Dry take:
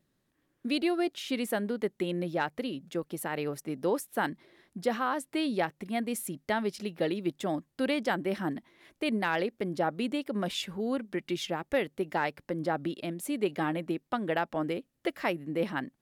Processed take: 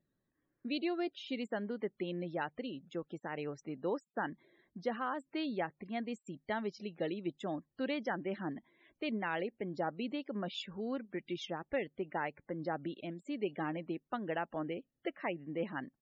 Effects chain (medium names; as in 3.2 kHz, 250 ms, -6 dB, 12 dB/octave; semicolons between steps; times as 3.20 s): loudest bins only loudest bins 64; resampled via 16 kHz; trim -7 dB